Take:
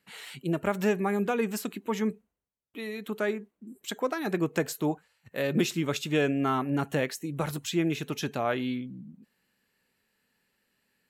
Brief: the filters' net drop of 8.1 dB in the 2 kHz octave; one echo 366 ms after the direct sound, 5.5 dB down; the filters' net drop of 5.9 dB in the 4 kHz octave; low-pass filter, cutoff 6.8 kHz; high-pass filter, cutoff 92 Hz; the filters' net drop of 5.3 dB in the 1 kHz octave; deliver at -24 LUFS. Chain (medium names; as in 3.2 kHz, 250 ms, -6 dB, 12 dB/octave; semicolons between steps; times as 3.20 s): high-pass 92 Hz; low-pass 6.8 kHz; peaking EQ 1 kHz -5 dB; peaking EQ 2 kHz -8 dB; peaking EQ 4 kHz -4 dB; delay 366 ms -5.5 dB; trim +7 dB